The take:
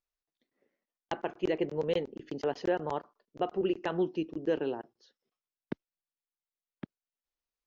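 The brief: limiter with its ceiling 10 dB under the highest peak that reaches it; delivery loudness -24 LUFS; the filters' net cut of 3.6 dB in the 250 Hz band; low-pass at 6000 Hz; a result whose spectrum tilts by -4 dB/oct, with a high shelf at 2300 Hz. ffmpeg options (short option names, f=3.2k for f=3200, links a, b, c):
-af "lowpass=6k,equalizer=f=250:t=o:g=-6.5,highshelf=f=2.3k:g=7,volume=14.5dB,alimiter=limit=-11.5dB:level=0:latency=1"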